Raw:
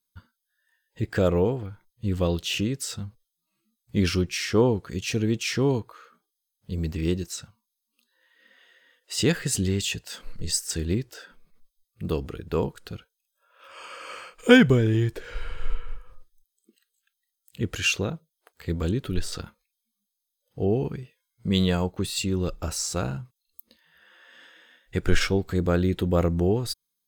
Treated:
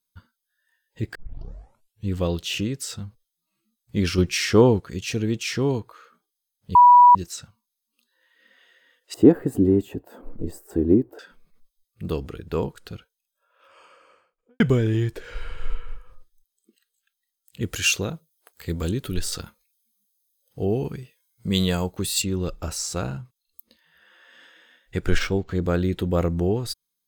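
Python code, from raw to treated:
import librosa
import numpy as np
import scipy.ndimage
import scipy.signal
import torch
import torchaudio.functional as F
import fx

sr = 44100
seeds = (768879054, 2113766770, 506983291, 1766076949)

y = fx.curve_eq(x, sr, hz=(170.0, 280.0, 490.0, 780.0, 2200.0, 5600.0, 16000.0), db=(0, 15, 7, 8, -16, -28, -4), at=(9.14, 11.19))
y = fx.studio_fade_out(y, sr, start_s=12.95, length_s=1.65)
y = fx.high_shelf(y, sr, hz=6000.0, db=11.5, at=(17.61, 22.22))
y = fx.resample_linear(y, sr, factor=4, at=(25.18, 25.62))
y = fx.edit(y, sr, fx.tape_start(start_s=1.15, length_s=0.94),
    fx.clip_gain(start_s=4.18, length_s=0.62, db=5.0),
    fx.bleep(start_s=6.75, length_s=0.4, hz=977.0, db=-7.5), tone=tone)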